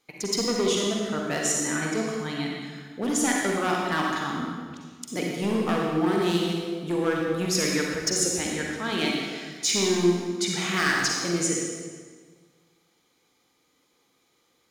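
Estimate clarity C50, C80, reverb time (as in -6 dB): -1.0 dB, 1.5 dB, 1.6 s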